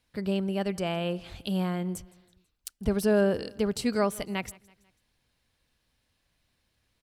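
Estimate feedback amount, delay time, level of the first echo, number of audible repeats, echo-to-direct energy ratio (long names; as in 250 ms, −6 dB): 49%, 164 ms, −23.5 dB, 2, −22.5 dB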